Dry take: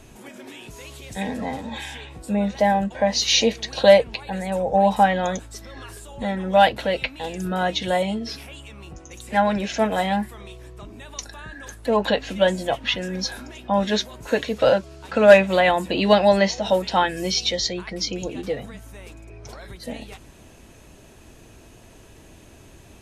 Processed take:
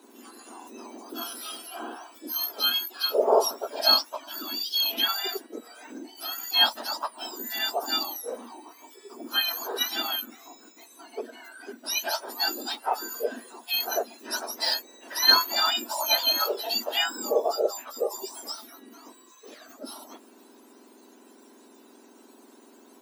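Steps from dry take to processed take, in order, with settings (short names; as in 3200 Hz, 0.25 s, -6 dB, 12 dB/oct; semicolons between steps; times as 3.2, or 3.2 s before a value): spectrum mirrored in octaves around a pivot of 1600 Hz; Chebyshev high-pass 230 Hz, order 6; gain -2.5 dB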